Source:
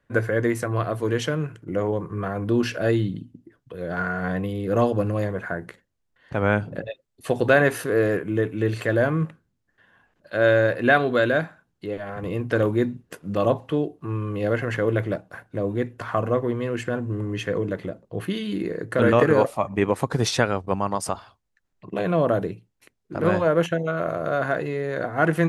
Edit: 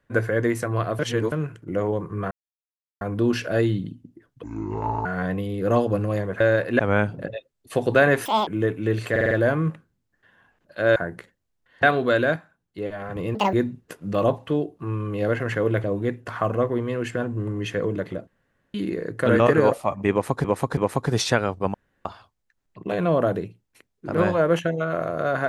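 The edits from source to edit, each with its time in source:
0:00.99–0:01.32: reverse
0:02.31: splice in silence 0.70 s
0:03.73–0:04.11: play speed 61%
0:05.46–0:06.33: swap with 0:10.51–0:10.90
0:07.79–0:08.22: play speed 199%
0:08.86: stutter 0.05 s, 5 plays
0:11.43–0:11.85: clip gain −6 dB
0:12.42–0:12.75: play speed 181%
0:15.06–0:15.57: remove
0:18.00–0:18.47: fill with room tone
0:19.84–0:20.17: repeat, 3 plays
0:20.81–0:21.12: fill with room tone

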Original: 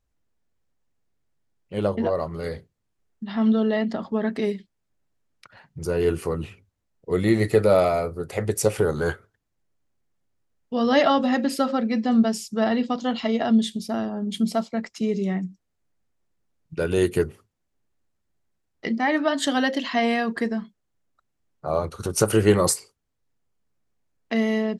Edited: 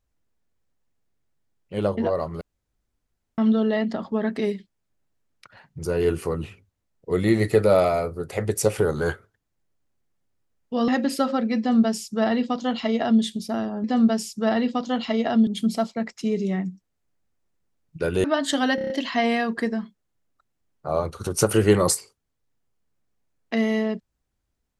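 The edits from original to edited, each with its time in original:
0:02.41–0:03.38: fill with room tone
0:10.88–0:11.28: remove
0:11.99–0:13.62: duplicate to 0:14.24
0:17.01–0:19.18: remove
0:19.69: stutter 0.03 s, 6 plays

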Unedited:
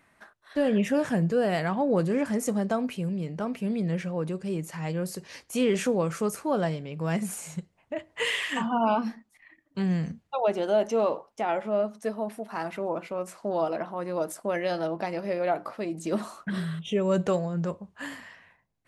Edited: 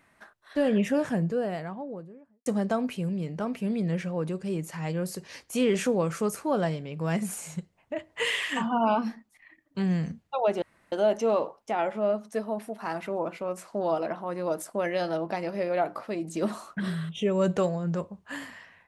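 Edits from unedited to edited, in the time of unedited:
0:00.68–0:02.46: fade out and dull
0:10.62: splice in room tone 0.30 s

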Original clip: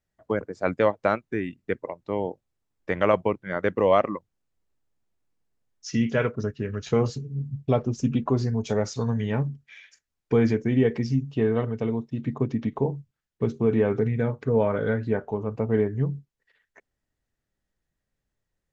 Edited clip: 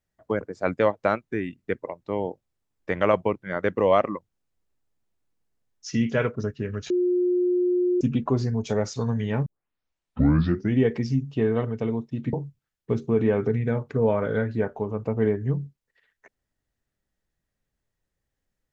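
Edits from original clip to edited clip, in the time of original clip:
0:06.90–0:08.01: beep over 358 Hz −19 dBFS
0:09.46: tape start 1.32 s
0:12.33–0:12.85: remove

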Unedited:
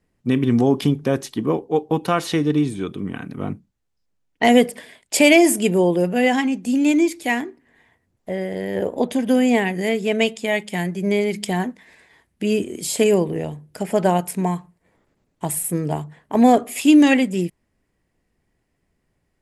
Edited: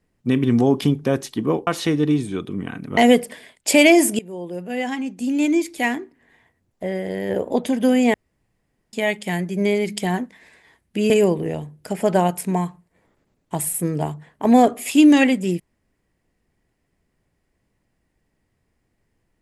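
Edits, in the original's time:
0:01.67–0:02.14: remove
0:03.44–0:04.43: remove
0:05.65–0:07.35: fade in, from −22.5 dB
0:09.60–0:10.39: fill with room tone
0:12.56–0:13.00: remove

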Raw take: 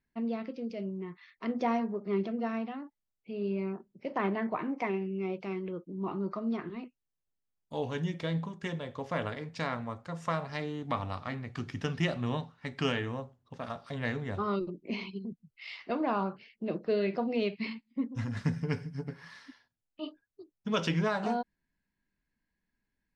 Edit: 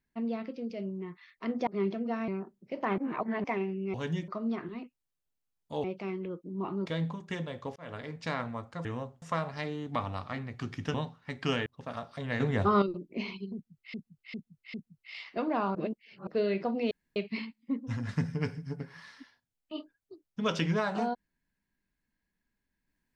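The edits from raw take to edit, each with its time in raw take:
0:01.67–0:02.00: remove
0:02.61–0:03.61: remove
0:04.31–0:04.77: reverse
0:05.27–0:06.29: swap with 0:07.85–0:08.19
0:09.09–0:09.44: fade in linear
0:11.90–0:12.30: remove
0:13.02–0:13.39: move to 0:10.18
0:14.13–0:14.55: clip gain +7.5 dB
0:15.27–0:15.67: repeat, 4 plays
0:16.28–0:16.80: reverse
0:17.44: splice in room tone 0.25 s

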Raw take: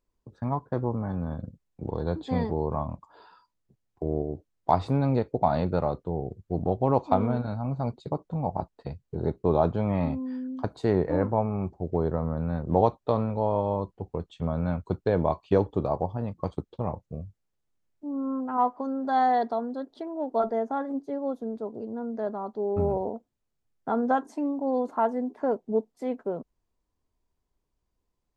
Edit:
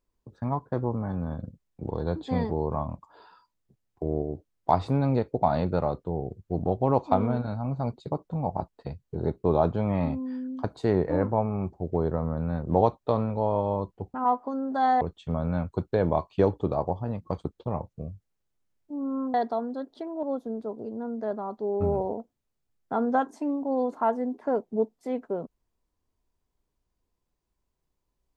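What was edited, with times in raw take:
0:18.47–0:19.34: move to 0:14.14
0:20.23–0:21.19: remove

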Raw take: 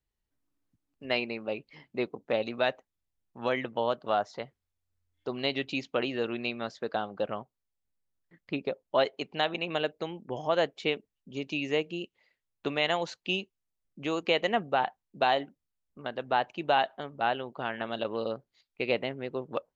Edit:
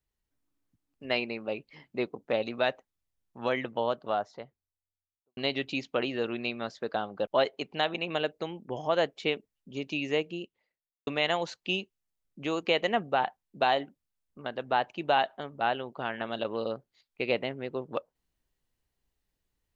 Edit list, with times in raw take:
0:03.67–0:05.37: fade out and dull
0:07.27–0:08.87: remove
0:11.78–0:12.67: fade out and dull

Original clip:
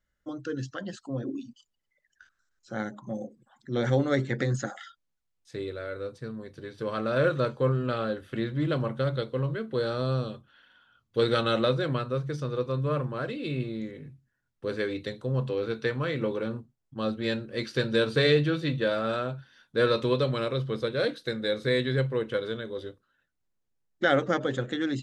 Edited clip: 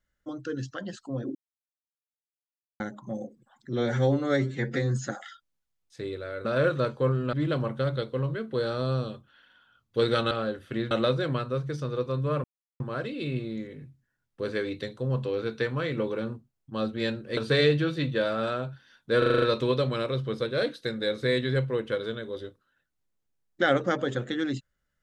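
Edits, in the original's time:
0:01.35–0:02.80: silence
0:03.73–0:04.63: time-stretch 1.5×
0:06.00–0:07.05: remove
0:07.93–0:08.53: move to 0:11.51
0:13.04: splice in silence 0.36 s
0:17.61–0:18.03: remove
0:19.84: stutter 0.04 s, 7 plays

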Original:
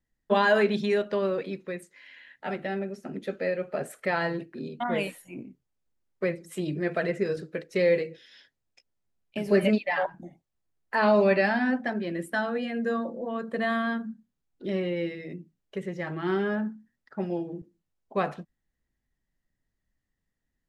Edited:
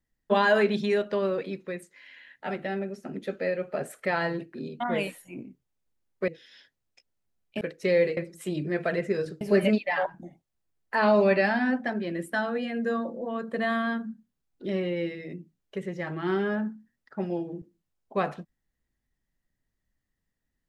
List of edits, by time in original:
0:06.28–0:07.52: swap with 0:08.08–0:09.41

